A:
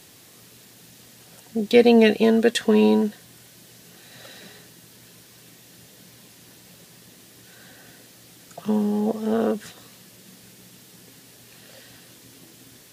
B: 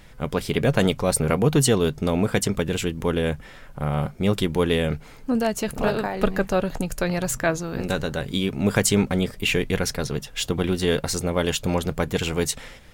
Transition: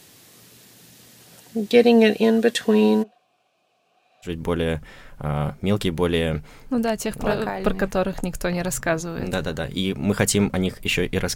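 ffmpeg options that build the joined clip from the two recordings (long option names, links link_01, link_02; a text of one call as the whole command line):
ffmpeg -i cue0.wav -i cue1.wav -filter_complex "[0:a]asplit=3[link_01][link_02][link_03];[link_01]afade=type=out:start_time=3.02:duration=0.02[link_04];[link_02]asplit=3[link_05][link_06][link_07];[link_05]bandpass=frequency=730:width_type=q:width=8,volume=0dB[link_08];[link_06]bandpass=frequency=1090:width_type=q:width=8,volume=-6dB[link_09];[link_07]bandpass=frequency=2440:width_type=q:width=8,volume=-9dB[link_10];[link_08][link_09][link_10]amix=inputs=3:normalize=0,afade=type=in:start_time=3.02:duration=0.02,afade=type=out:start_time=4.34:duration=0.02[link_11];[link_03]afade=type=in:start_time=4.34:duration=0.02[link_12];[link_04][link_11][link_12]amix=inputs=3:normalize=0,apad=whole_dur=11.35,atrim=end=11.35,atrim=end=4.34,asetpts=PTS-STARTPTS[link_13];[1:a]atrim=start=2.79:end=9.92,asetpts=PTS-STARTPTS[link_14];[link_13][link_14]acrossfade=duration=0.12:curve1=tri:curve2=tri" out.wav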